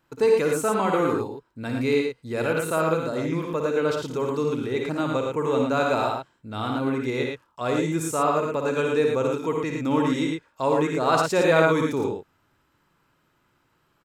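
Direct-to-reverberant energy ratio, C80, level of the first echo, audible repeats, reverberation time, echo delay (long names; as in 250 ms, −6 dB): no reverb audible, no reverb audible, −6.5 dB, 2, no reverb audible, 56 ms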